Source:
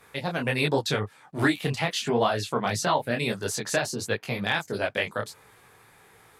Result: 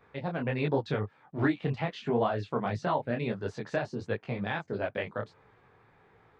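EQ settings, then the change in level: tape spacing loss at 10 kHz 44 dB; high shelf 4100 Hz +5.5 dB; -1.5 dB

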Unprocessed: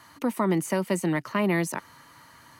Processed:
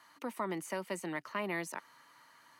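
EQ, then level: HPF 150 Hz 12 dB/oct; low shelf 370 Hz -11.5 dB; high shelf 5800 Hz -5.5 dB; -7.0 dB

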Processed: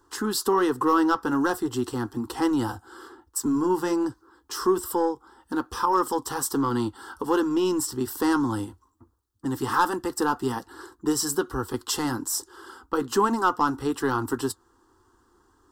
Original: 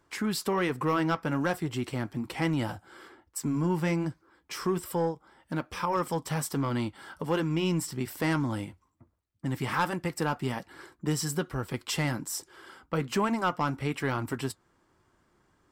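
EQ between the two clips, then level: fixed phaser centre 610 Hz, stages 6; +8.0 dB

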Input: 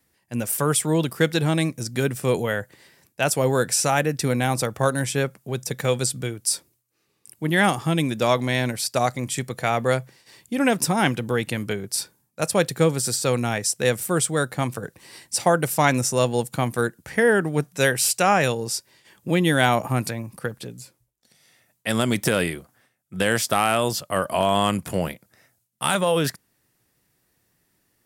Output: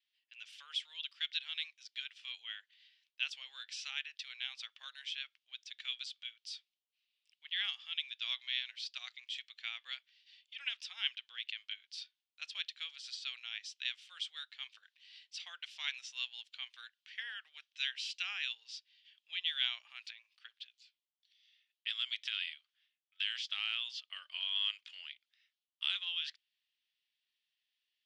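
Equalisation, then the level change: ladder high-pass 2800 Hz, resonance 60%; LPF 6200 Hz 12 dB/oct; air absorption 230 m; +2.5 dB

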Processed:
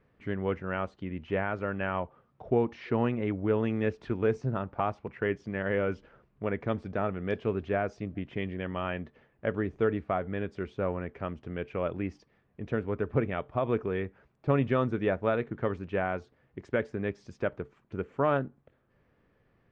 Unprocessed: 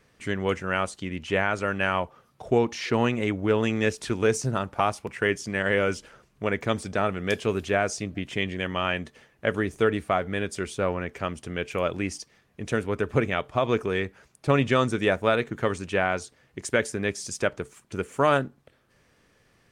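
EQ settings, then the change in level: air absorption 77 m; tape spacing loss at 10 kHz 35 dB; -2.5 dB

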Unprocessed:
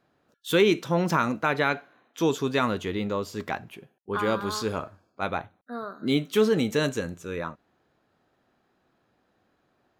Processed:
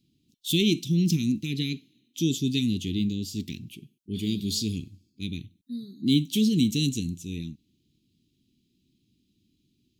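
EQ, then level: inverse Chebyshev band-stop 560–1600 Hz, stop band 50 dB; +5.0 dB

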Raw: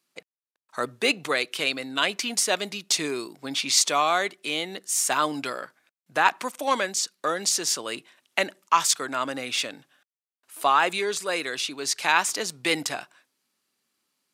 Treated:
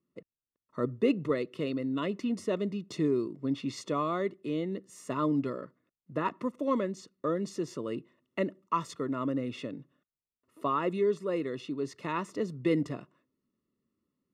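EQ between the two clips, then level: running mean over 56 samples; low shelf 120 Hz +9 dB; +5.0 dB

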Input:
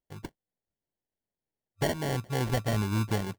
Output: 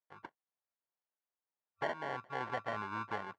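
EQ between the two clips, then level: band-pass 1200 Hz, Q 1.9; air absorption 79 m; +2.5 dB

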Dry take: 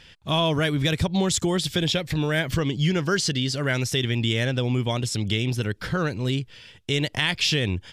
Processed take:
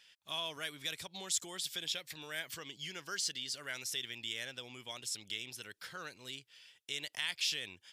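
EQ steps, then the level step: differentiator; high shelf 2700 Hz -8.5 dB; 0.0 dB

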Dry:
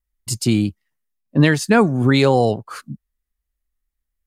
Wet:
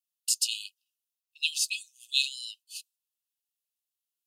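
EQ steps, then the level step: brick-wall FIR high-pass 2500 Hz; 0.0 dB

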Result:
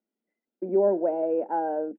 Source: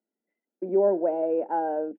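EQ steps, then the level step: air absorption 140 m; bell 220 Hz +3 dB 0.4 oct; 0.0 dB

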